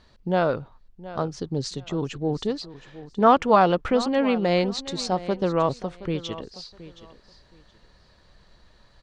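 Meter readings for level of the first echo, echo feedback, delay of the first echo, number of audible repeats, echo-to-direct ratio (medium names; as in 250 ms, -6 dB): -16.0 dB, 21%, 721 ms, 2, -16.0 dB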